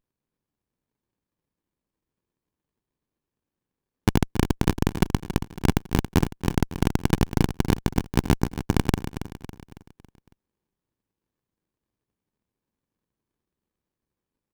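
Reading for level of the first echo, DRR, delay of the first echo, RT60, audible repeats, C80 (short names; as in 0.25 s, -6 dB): -11.0 dB, none, 0.277 s, none, 4, none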